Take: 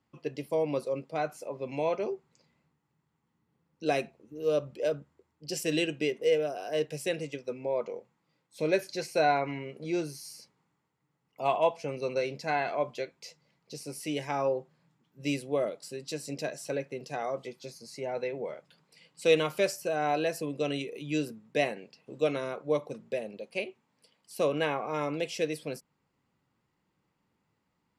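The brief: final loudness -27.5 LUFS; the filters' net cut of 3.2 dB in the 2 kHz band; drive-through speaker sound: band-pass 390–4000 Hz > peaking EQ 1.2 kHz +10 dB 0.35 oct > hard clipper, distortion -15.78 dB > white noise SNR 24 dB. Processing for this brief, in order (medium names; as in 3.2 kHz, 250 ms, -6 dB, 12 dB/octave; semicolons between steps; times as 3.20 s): band-pass 390–4000 Hz; peaking EQ 1.2 kHz +10 dB 0.35 oct; peaking EQ 2 kHz -5.5 dB; hard clipper -22.5 dBFS; white noise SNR 24 dB; trim +6.5 dB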